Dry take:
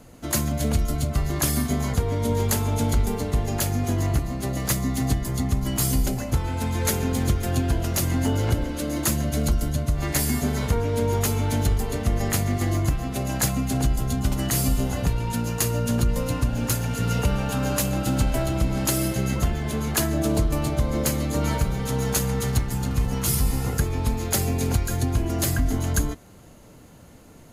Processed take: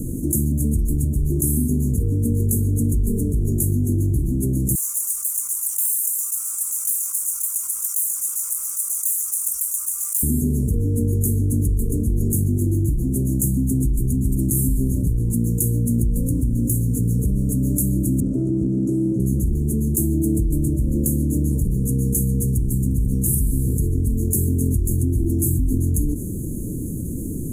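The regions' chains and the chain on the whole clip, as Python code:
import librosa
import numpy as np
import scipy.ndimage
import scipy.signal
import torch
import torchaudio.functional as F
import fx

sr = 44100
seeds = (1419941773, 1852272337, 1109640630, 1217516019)

y = fx.chain(x, sr, fx.lower_of_two(delay_ms=0.84),
    fx.ellip_highpass(hz=1200.0, order=4, stop_db=70),
    fx.env_flatten(amount_pct=50), at=(4.75, 10.23))
y = fx.chain(y, sr, fx.quant_companded(bits=4),
    fx.bandpass_edges(low_hz=160.0, high_hz=2400.0), at=(18.2, 19.2))
y = scipy.signal.sosfilt(scipy.signal.ellip(3, 1.0, 40, [350.0, 8400.0], 'bandstop', fs=sr, output='sos'), y)
y = fx.band_shelf(y, sr, hz=3400.0, db=-11.0, octaves=1.1)
y = fx.env_flatten(y, sr, amount_pct=70)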